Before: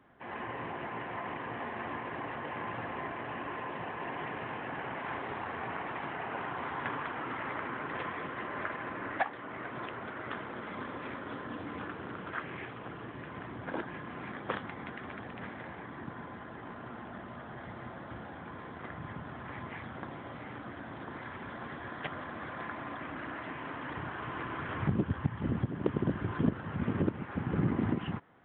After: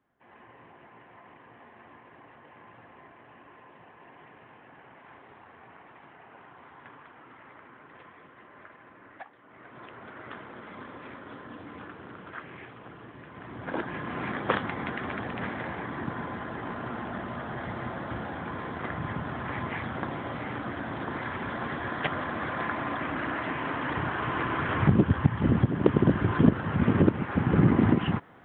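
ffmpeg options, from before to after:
ffmpeg -i in.wav -af "volume=9dB,afade=type=in:start_time=9.43:duration=0.74:silence=0.298538,afade=type=in:start_time=13.34:duration=0.89:silence=0.251189" out.wav

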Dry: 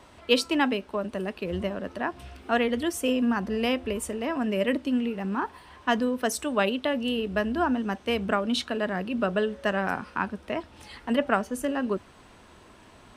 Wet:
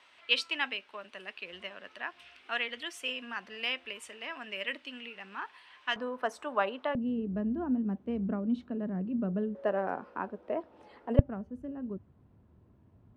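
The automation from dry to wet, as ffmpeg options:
ffmpeg -i in.wav -af "asetnsamples=nb_out_samples=441:pad=0,asendcmd='5.96 bandpass f 1000;6.95 bandpass f 180;9.55 bandpass f 520;11.19 bandpass f 110',bandpass=frequency=2600:width_type=q:width=1.4:csg=0" out.wav

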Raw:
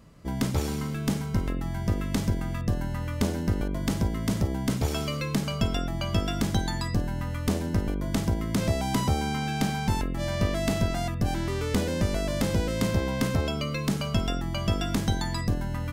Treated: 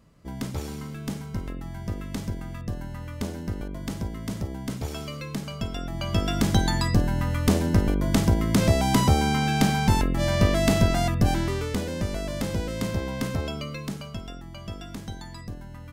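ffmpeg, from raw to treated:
ffmpeg -i in.wav -af "volume=5.5dB,afade=type=in:start_time=5.74:duration=0.92:silence=0.298538,afade=type=out:start_time=11.25:duration=0.5:silence=0.398107,afade=type=out:start_time=13.51:duration=0.69:silence=0.398107" out.wav

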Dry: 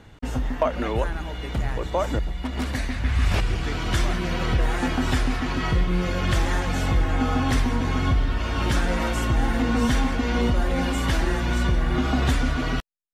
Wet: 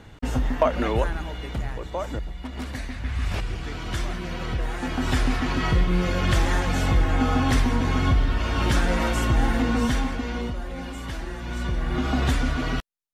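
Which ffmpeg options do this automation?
ffmpeg -i in.wav -af "volume=17.5dB,afade=type=out:start_time=0.86:duration=0.94:silence=0.421697,afade=type=in:start_time=4.81:duration=0.46:silence=0.473151,afade=type=out:start_time=9.45:duration=1.14:silence=0.281838,afade=type=in:start_time=11.37:duration=0.8:silence=0.354813" out.wav

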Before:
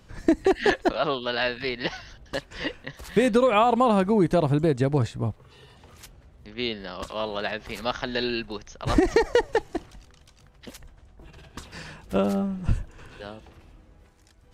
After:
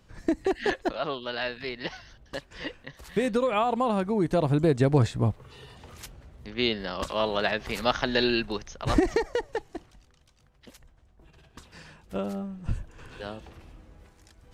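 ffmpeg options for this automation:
ffmpeg -i in.wav -af "volume=13dB,afade=type=in:start_time=4.15:duration=1.02:silence=0.375837,afade=type=out:start_time=8.52:duration=0.76:silence=0.281838,afade=type=in:start_time=12.62:duration=0.7:silence=0.316228" out.wav

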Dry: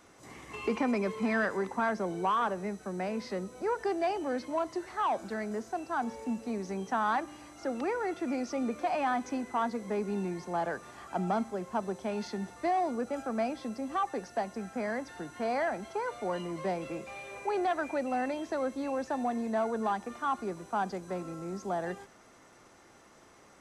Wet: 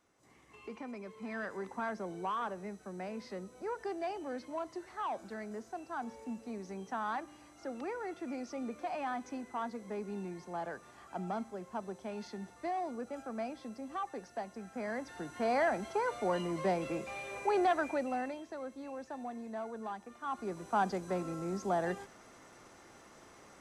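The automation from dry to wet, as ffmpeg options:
ffmpeg -i in.wav -af "volume=12.5dB,afade=type=in:start_time=1.12:duration=0.61:silence=0.421697,afade=type=in:start_time=14.64:duration=1.01:silence=0.375837,afade=type=out:start_time=17.66:duration=0.79:silence=0.266073,afade=type=in:start_time=20.19:duration=0.6:silence=0.266073" out.wav

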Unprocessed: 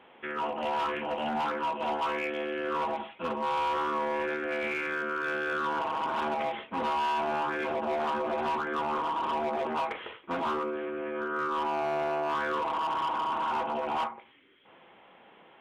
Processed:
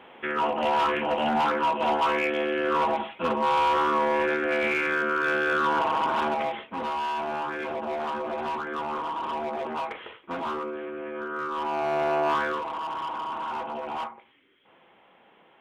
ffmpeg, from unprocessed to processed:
ffmpeg -i in.wav -af "volume=13.5dB,afade=type=out:start_time=5.94:duration=0.83:silence=0.446684,afade=type=in:start_time=11.55:duration=0.73:silence=0.446684,afade=type=out:start_time=12.28:duration=0.35:silence=0.375837" out.wav

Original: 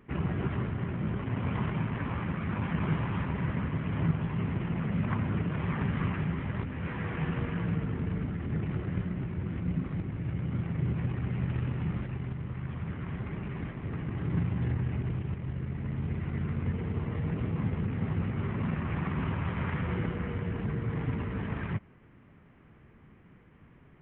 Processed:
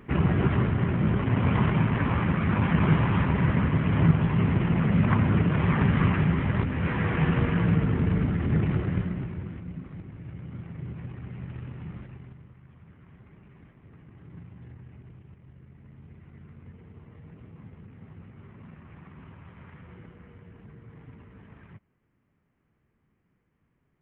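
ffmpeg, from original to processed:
ffmpeg -i in.wav -af "volume=8dB,afade=type=out:start_time=8.6:duration=0.66:silence=0.446684,afade=type=out:start_time=9.26:duration=0.4:silence=0.398107,afade=type=out:start_time=12.02:duration=0.56:silence=0.354813" out.wav

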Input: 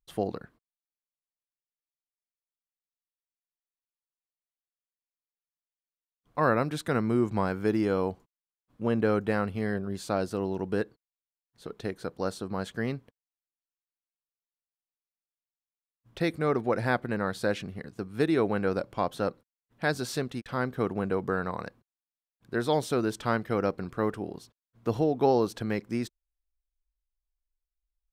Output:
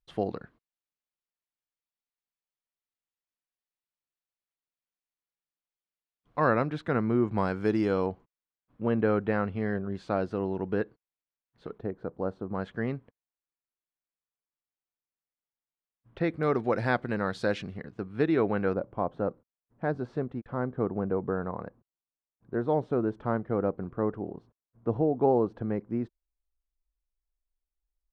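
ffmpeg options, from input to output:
ffmpeg -i in.wav -af "asetnsamples=nb_out_samples=441:pad=0,asendcmd='6.62 lowpass f 2400;7.38 lowpass f 6100;8.06 lowpass f 2500;11.78 lowpass f 1000;12.55 lowpass f 2100;16.43 lowpass f 5500;17.77 lowpass f 2700;18.74 lowpass f 1000',lowpass=4100" out.wav

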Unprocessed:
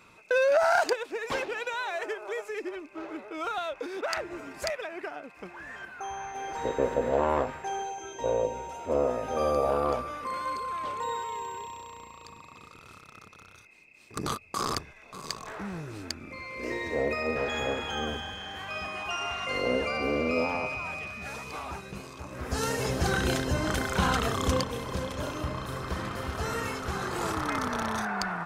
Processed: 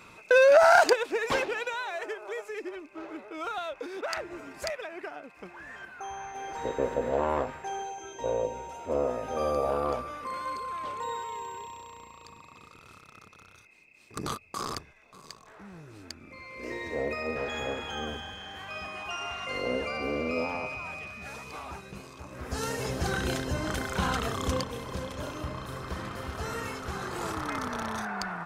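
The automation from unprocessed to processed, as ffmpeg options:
ffmpeg -i in.wav -af "volume=15dB,afade=type=out:start_time=1.16:duration=0.68:silence=0.446684,afade=type=out:start_time=14.28:duration=1.17:silence=0.281838,afade=type=in:start_time=15.45:duration=1.41:silence=0.316228" out.wav

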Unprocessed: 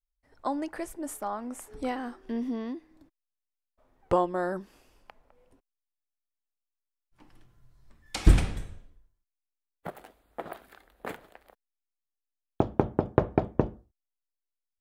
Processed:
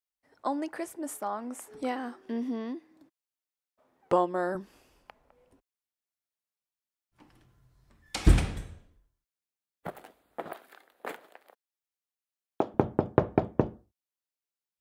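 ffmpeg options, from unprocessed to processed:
ffmpeg -i in.wav -af "asetnsamples=nb_out_samples=441:pad=0,asendcmd='4.55 highpass f 43;9.99 highpass f 110;10.53 highpass f 320;12.74 highpass f 85',highpass=170" out.wav

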